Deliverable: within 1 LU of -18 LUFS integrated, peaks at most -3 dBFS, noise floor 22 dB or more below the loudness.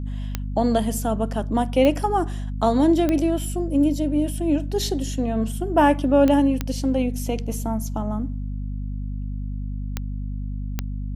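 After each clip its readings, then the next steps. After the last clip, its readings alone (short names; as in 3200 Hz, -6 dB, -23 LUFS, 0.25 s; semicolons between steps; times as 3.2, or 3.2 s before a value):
clicks 7; hum 50 Hz; harmonics up to 250 Hz; hum level -26 dBFS; loudness -23.0 LUFS; peak -6.0 dBFS; loudness target -18.0 LUFS
-> de-click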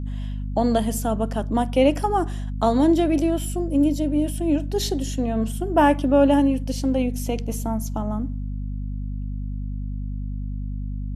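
clicks 0; hum 50 Hz; harmonics up to 250 Hz; hum level -26 dBFS
-> notches 50/100/150/200/250 Hz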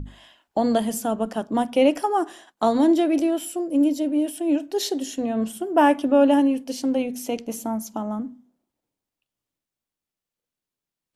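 hum none; loudness -22.5 LUFS; peak -6.5 dBFS; loudness target -18.0 LUFS
-> gain +4.5 dB; limiter -3 dBFS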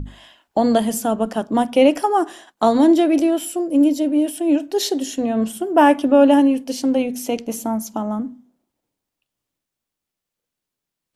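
loudness -18.0 LUFS; peak -3.0 dBFS; noise floor -84 dBFS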